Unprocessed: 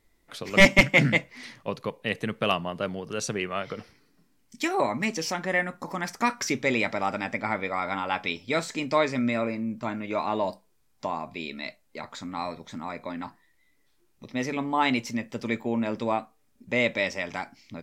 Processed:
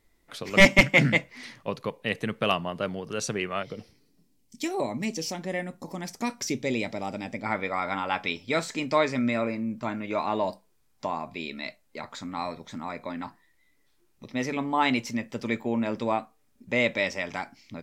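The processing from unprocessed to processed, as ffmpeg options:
-filter_complex "[0:a]asettb=1/sr,asplit=3[s0][s1][s2];[s0]atrim=end=3.634[s3];[s1]atrim=start=3.63:end=7.46,asetpts=PTS-STARTPTS,afade=t=in:d=0.004:c=qsin,afade=t=out:st=3.826:d=0.004:c=qsin,equalizer=f=1400:w=0.91:g=-13.5[s4];[s2]atrim=start=7.456[s5];[s3][s4]acrossfade=d=0.004:c1=hsin:c2=qsin[s6];[s6][s5]acrossfade=d=0.004:c1=qsin:c2=hsin"

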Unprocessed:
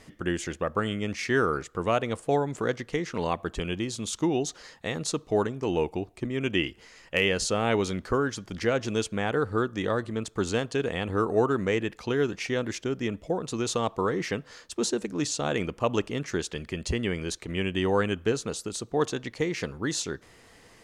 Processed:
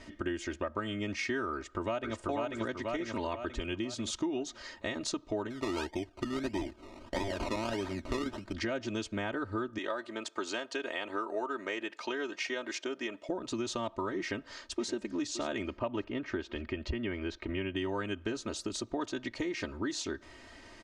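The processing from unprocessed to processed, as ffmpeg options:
-filter_complex "[0:a]asplit=2[s0][s1];[s1]afade=t=in:st=1.54:d=0.01,afade=t=out:st=2.18:d=0.01,aecho=0:1:490|980|1470|1960|2450|2940:0.944061|0.424827|0.191172|0.0860275|0.0387124|0.0174206[s2];[s0][s2]amix=inputs=2:normalize=0,asettb=1/sr,asplit=3[s3][s4][s5];[s3]atrim=end=5.504[s6];[s4]atrim=start=5.5:end=8.53,asetpts=PTS-STARTPTS,afade=t=in:d=0.004:c=qsin,afade=t=out:st=3.026:d=0.004:c=qsin,acrusher=samples=22:mix=1:aa=0.000001:lfo=1:lforange=13.2:lforate=1.6[s7];[s5]atrim=start=8.526[s8];[s6][s7]acrossfade=d=0.004:c1=hsin:c2=qsin[s9];[s9][s8]acrossfade=d=0.004:c1=qsin:c2=hsin,asettb=1/sr,asplit=3[s10][s11][s12];[s10]atrim=end=9.784[s13];[s11]atrim=start=9.78:end=13.29,asetpts=PTS-STARTPTS,afade=t=in:d=0.004:c=qsin,afade=t=out:st=3.506:d=0.004:c=qsin,highpass=460[s14];[s12]atrim=start=13.286[s15];[s13][s14]acrossfade=d=0.004:c1=hsin:c2=qsin[s16];[s16][s15]acrossfade=d=0.004:c1=qsin:c2=hsin,asplit=2[s17][s18];[s18]afade=t=in:st=14.22:d=0.01,afade=t=out:st=14.9:d=0.01,aecho=0:1:570|1140|1710|2280:0.188365|0.0847642|0.0381439|0.0171648[s19];[s17][s19]amix=inputs=2:normalize=0,asettb=1/sr,asplit=3[s20][s21][s22];[s20]atrim=end=15.784[s23];[s21]atrim=start=15.78:end=17.76,asetpts=PTS-STARTPTS,afade=t=in:d=0.004:c=qsin,afade=t=out:st=1.976:d=0.004:c=qsin,lowpass=2900[s24];[s22]atrim=start=17.756[s25];[s23][s24]acrossfade=d=0.004:c1=hsin:c2=qsin[s26];[s26][s25]acrossfade=d=0.004:c1=qsin:c2=hsin,lowpass=5800,aecho=1:1:3.2:0.87,acompressor=threshold=0.0224:ratio=4"

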